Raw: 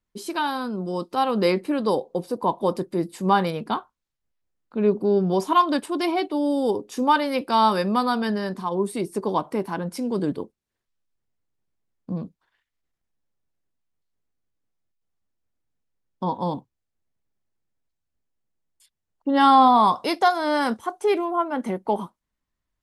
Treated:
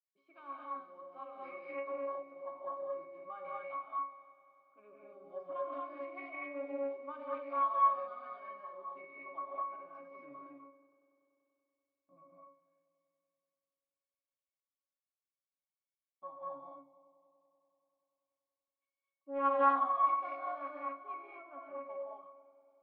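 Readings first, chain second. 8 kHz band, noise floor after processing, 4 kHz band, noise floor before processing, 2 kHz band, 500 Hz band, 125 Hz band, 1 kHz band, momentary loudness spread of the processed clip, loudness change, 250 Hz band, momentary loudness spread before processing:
under -35 dB, under -85 dBFS, under -35 dB, -83 dBFS, -17.5 dB, -16.5 dB, under -40 dB, -13.5 dB, 22 LU, -14.5 dB, -26.5 dB, 11 LU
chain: octave resonator C#, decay 0.43 s; in parallel at -9 dB: soft clip -26 dBFS, distortion -9 dB; on the sum: Butterworth band-pass 1500 Hz, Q 0.69; on a send: multi-head echo 96 ms, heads all three, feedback 64%, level -23.5 dB; on the sum: non-linear reverb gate 0.27 s rising, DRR -3 dB; Doppler distortion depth 0.14 ms

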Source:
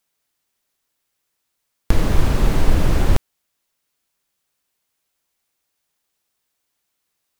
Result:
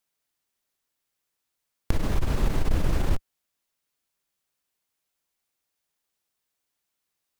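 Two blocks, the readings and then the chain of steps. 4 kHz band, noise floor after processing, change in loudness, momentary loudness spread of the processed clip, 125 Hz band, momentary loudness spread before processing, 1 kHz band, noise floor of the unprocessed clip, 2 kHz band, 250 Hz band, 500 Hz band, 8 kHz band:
-8.5 dB, -82 dBFS, -8.0 dB, 5 LU, -8.0 dB, 4 LU, -8.5 dB, -75 dBFS, -8.5 dB, -8.0 dB, -8.5 dB, -8.5 dB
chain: core saturation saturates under 40 Hz; gain -6.5 dB

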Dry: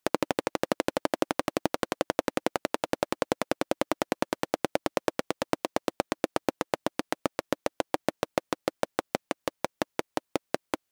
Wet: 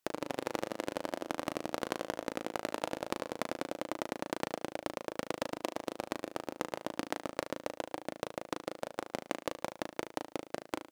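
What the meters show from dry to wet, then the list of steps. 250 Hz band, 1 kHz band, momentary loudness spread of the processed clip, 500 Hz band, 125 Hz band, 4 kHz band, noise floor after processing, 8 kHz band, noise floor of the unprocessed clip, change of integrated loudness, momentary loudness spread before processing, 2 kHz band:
-8.0 dB, -7.5 dB, 4 LU, -8.0 dB, -8.0 dB, -7.0 dB, -69 dBFS, -7.0 dB, -80 dBFS, -8.0 dB, 4 LU, -7.5 dB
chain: negative-ratio compressor -30 dBFS, ratio -1; flutter echo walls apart 6.3 m, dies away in 0.37 s; gain -5 dB

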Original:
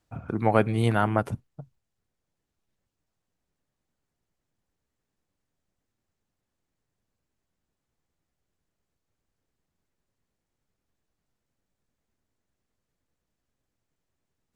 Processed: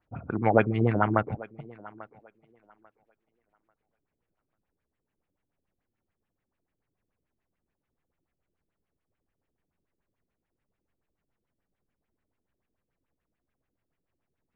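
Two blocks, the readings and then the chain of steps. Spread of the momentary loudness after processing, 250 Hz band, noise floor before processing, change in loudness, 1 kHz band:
22 LU, 0.0 dB, -83 dBFS, -0.5 dB, 0.0 dB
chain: LFO low-pass sine 6.9 Hz 310–2700 Hz; thinning echo 0.842 s, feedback 21%, high-pass 270 Hz, level -19 dB; gain -2 dB

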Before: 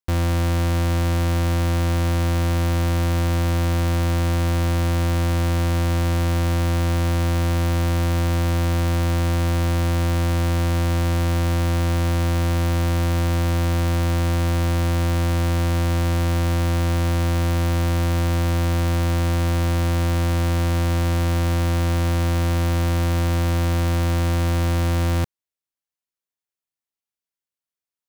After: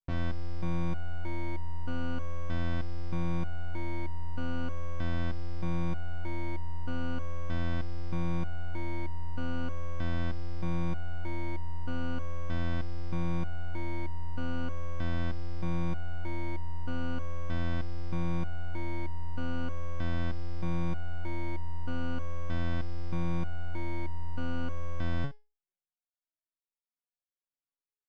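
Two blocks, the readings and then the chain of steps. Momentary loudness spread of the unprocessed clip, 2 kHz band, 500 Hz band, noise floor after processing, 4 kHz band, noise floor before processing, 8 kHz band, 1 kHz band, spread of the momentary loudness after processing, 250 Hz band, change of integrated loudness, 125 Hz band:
0 LU, -12.5 dB, -15.5 dB, under -85 dBFS, -18.0 dB, under -85 dBFS, under -25 dB, -14.0 dB, 5 LU, -12.5 dB, -15.5 dB, -16.5 dB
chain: tape spacing loss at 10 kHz 36 dB; stepped resonator 3.2 Hz 140–950 Hz; gain +8 dB

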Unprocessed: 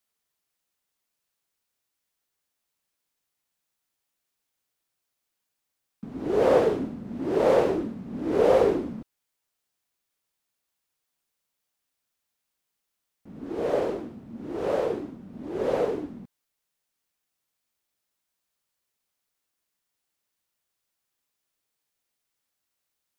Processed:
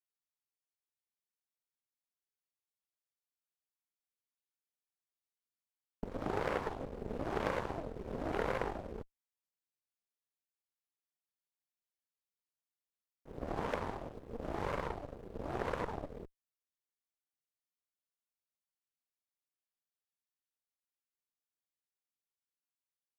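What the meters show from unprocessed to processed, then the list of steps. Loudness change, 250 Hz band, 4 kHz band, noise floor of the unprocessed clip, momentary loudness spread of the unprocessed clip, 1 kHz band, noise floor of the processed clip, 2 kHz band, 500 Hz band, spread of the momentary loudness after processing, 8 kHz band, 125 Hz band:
-14.0 dB, -13.5 dB, -8.5 dB, -82 dBFS, 20 LU, -7.5 dB, under -85 dBFS, -4.5 dB, -16.0 dB, 12 LU, n/a, -5.0 dB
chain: compressor 5:1, threshold -35 dBFS, peak gain reduction 18 dB; added harmonics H 3 -10 dB, 6 -19 dB, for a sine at -24 dBFS; gain +6.5 dB

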